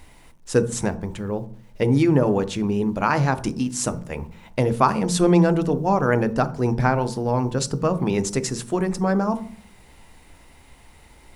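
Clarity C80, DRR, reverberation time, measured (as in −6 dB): 21.5 dB, 11.5 dB, 0.45 s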